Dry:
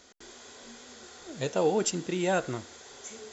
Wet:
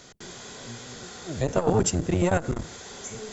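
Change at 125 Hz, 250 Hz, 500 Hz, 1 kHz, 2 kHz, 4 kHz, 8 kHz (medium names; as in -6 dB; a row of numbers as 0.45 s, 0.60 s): +11.0 dB, +5.5 dB, +2.5 dB, +2.5 dB, +1.5 dB, +1.5 dB, no reading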